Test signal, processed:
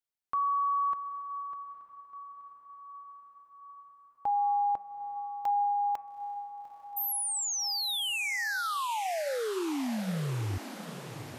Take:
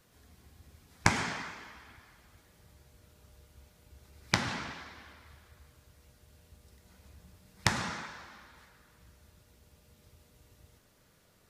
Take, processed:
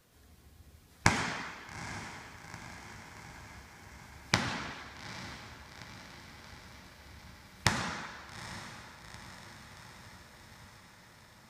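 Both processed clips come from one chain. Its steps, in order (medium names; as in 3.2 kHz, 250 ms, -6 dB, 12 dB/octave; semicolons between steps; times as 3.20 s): de-hum 198.7 Hz, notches 13; on a send: echo that smears into a reverb 850 ms, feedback 67%, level -12 dB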